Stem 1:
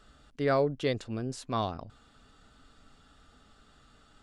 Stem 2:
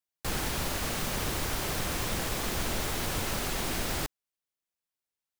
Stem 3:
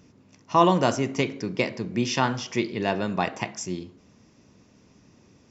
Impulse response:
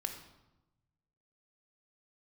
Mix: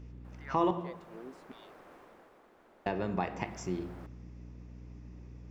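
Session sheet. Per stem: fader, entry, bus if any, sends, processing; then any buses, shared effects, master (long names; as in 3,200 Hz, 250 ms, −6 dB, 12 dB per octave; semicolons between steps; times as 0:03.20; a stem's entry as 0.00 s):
−14.0 dB, 0.00 s, bus A, no send, auto-filter high-pass saw down 0.66 Hz 220–3,000 Hz
0:00.77 −22 dB → 0:01.12 −15 dB → 0:01.95 −15 dB → 0:02.48 −23 dB → 0:03.31 −23 dB → 0:03.54 −14 dB, 0.00 s, no bus, no send, three-way crossover with the lows and the highs turned down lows −22 dB, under 260 Hz, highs −13 dB, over 2,200 Hz
−4.0 dB, 0.00 s, muted 0:00.71–0:02.86, bus A, send −7.5 dB, mains hum 60 Hz, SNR 20 dB
bus A: 0.0 dB, parametric band 2,100 Hz +6 dB 0.82 octaves; downward compressor, threshold −32 dBFS, peak gain reduction 15.5 dB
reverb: on, RT60 1.0 s, pre-delay 17 ms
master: high-shelf EQ 2,000 Hz −12 dB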